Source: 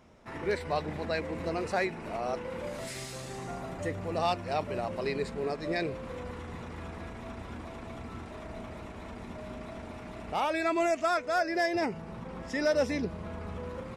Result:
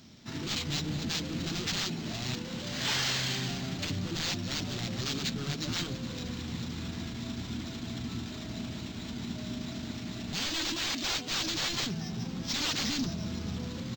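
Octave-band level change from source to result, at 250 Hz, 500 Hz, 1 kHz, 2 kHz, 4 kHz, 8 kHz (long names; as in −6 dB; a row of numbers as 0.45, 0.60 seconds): +1.5, −12.5, −9.5, −1.0, +12.5, +11.5 decibels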